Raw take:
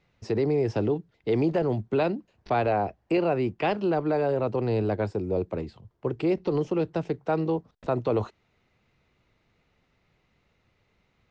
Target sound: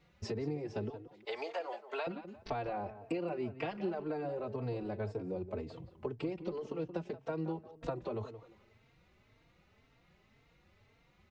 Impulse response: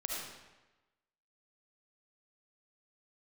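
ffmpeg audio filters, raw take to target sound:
-filter_complex "[0:a]asettb=1/sr,asplit=3[link_01][link_02][link_03];[link_01]atrim=end=0.894[link_04];[link_02]atrim=start=0.89:end=2.07,asetpts=PTS-STARTPTS,afade=type=in:duration=0.004:curve=qsin,afade=type=out:start_time=1.176:duration=0.004:curve=qsin,highpass=frequency=640:width=0.5412,highpass=frequency=640:width=1.3066[link_05];[link_03]atrim=start=2.066[link_06];[link_04][link_05]acrossfade=duration=0.004:curve1=hsin:curve2=qsin[link_07];[link_07][link_06]acrossfade=duration=0.004:curve1=qsin:curve2=hsin,acompressor=threshold=-37dB:ratio=6,asplit=2[link_08][link_09];[link_09]adelay=176,lowpass=frequency=2500:poles=1,volume=-11.5dB,asplit=2[link_10][link_11];[link_11]adelay=176,lowpass=frequency=2500:poles=1,volume=0.3,asplit=2[link_12][link_13];[link_13]adelay=176,lowpass=frequency=2500:poles=1,volume=0.3[link_14];[link_08][link_10][link_12][link_14]amix=inputs=4:normalize=0,asplit=2[link_15][link_16];[link_16]adelay=3.8,afreqshift=1.9[link_17];[link_15][link_17]amix=inputs=2:normalize=1,volume=4dB"

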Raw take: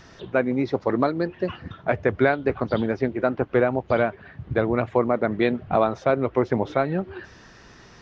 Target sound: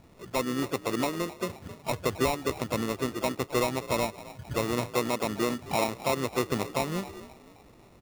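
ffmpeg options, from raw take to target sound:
ffmpeg -i in.wav -filter_complex "[0:a]equalizer=frequency=1800:width_type=o:width=1:gain=-8.5,asplit=5[link_01][link_02][link_03][link_04][link_05];[link_02]adelay=264,afreqshift=49,volume=-17dB[link_06];[link_03]adelay=528,afreqshift=98,volume=-24.5dB[link_07];[link_04]adelay=792,afreqshift=147,volume=-32.1dB[link_08];[link_05]adelay=1056,afreqshift=196,volume=-39.6dB[link_09];[link_01][link_06][link_07][link_08][link_09]amix=inputs=5:normalize=0,acrusher=samples=28:mix=1:aa=0.000001,asplit=2[link_10][link_11];[link_11]asetrate=55563,aresample=44100,atempo=0.793701,volume=-12dB[link_12];[link_10][link_12]amix=inputs=2:normalize=0,volume=-6.5dB" out.wav

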